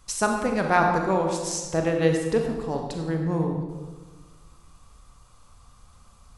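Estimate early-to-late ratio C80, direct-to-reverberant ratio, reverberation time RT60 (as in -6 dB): 5.5 dB, 2.0 dB, 1.4 s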